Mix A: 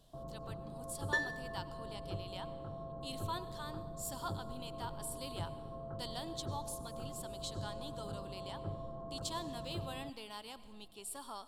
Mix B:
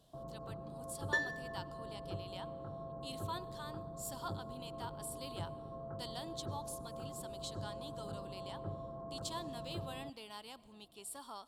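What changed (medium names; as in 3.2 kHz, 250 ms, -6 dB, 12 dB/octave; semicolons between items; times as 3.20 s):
speech: send -8.0 dB; master: add high-pass 75 Hz 6 dB/octave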